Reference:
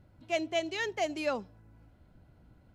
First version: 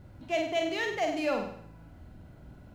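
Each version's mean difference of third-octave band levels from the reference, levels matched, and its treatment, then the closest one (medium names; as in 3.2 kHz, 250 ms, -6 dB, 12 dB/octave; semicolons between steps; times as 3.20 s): 5.5 dB: companding laws mixed up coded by mu; treble shelf 4.9 kHz -6.5 dB; on a send: flutter echo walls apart 8.4 m, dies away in 0.63 s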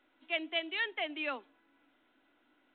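7.0 dB: steep high-pass 260 Hz 72 dB/octave; peaking EQ 500 Hz -15 dB 2.3 oct; trim +5 dB; µ-law 64 kbps 8 kHz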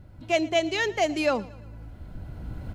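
3.5 dB: recorder AGC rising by 10 dB/s; bass shelf 100 Hz +8.5 dB; feedback delay 114 ms, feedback 51%, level -21.5 dB; trim +7 dB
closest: third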